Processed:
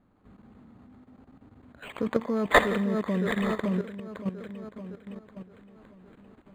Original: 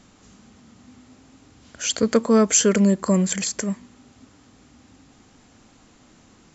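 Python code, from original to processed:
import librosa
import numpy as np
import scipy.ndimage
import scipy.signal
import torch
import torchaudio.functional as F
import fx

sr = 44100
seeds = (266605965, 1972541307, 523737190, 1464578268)

y = fx.env_lowpass(x, sr, base_hz=2100.0, full_db=-15.0)
y = fx.high_shelf(y, sr, hz=3100.0, db=fx.steps((0.0, -8.5), (1.93, 4.0)))
y = fx.echo_split(y, sr, split_hz=2600.0, low_ms=564, high_ms=84, feedback_pct=52, wet_db=-7)
y = fx.level_steps(y, sr, step_db=13)
y = np.interp(np.arange(len(y)), np.arange(len(y))[::8], y[::8])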